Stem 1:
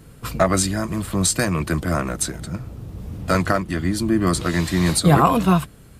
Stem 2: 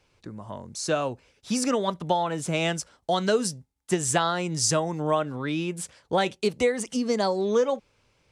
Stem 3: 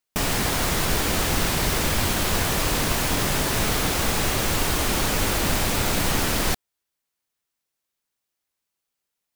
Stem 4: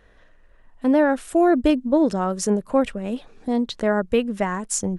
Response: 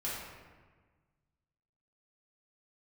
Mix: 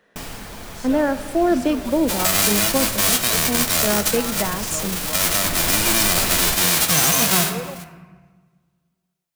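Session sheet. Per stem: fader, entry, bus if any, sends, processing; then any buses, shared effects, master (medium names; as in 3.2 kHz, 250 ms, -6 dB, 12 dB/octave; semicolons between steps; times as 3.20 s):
+2.5 dB, 1.85 s, send -10.5 dB, formants flattened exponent 0.1
-10.5 dB, 0.00 s, no send, none
-3.0 dB, 0.00 s, send -15 dB, hum notches 50/100 Hz; auto duck -20 dB, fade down 0.50 s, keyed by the fourth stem
-2.5 dB, 0.00 s, send -14 dB, steep high-pass 160 Hz 48 dB/octave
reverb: on, RT60 1.4 s, pre-delay 3 ms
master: peak limiter -6.5 dBFS, peak gain reduction 10 dB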